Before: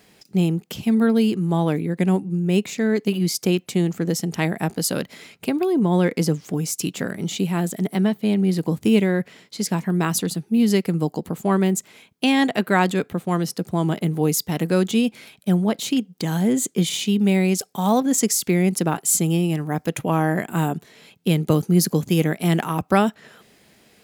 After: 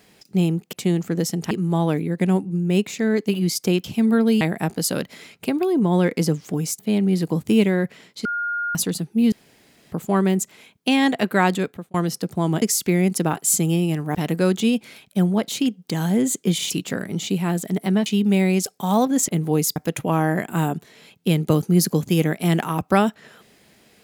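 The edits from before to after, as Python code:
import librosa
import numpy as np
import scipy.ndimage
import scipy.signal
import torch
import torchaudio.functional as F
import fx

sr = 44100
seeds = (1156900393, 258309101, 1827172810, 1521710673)

y = fx.edit(x, sr, fx.swap(start_s=0.73, length_s=0.57, other_s=3.63, other_length_s=0.78),
    fx.move(start_s=6.79, length_s=1.36, to_s=17.01),
    fx.bleep(start_s=9.61, length_s=0.5, hz=1420.0, db=-22.0),
    fx.room_tone_fill(start_s=10.68, length_s=0.6),
    fx.fade_out_span(start_s=12.92, length_s=0.38),
    fx.swap(start_s=13.98, length_s=0.48, other_s=18.23, other_length_s=1.53), tone=tone)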